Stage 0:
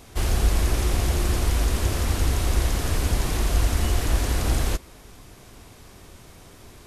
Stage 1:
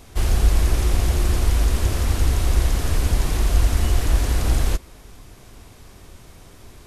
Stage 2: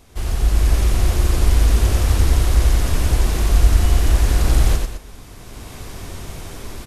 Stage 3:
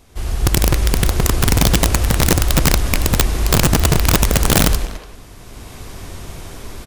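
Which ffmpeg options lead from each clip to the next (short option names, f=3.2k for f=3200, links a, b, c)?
-af "lowshelf=f=67:g=6.5"
-filter_complex "[0:a]dynaudnorm=f=360:g=3:m=15dB,asplit=2[a][b];[b]aecho=0:1:93.29|209.9:0.631|0.282[c];[a][c]amix=inputs=2:normalize=0,volume=-4.5dB"
-filter_complex "[0:a]aeval=exprs='(mod(2.37*val(0)+1,2)-1)/2.37':c=same,asplit=2[a][b];[b]adelay=290,highpass=300,lowpass=3.4k,asoftclip=type=hard:threshold=-16.5dB,volume=-11dB[c];[a][c]amix=inputs=2:normalize=0"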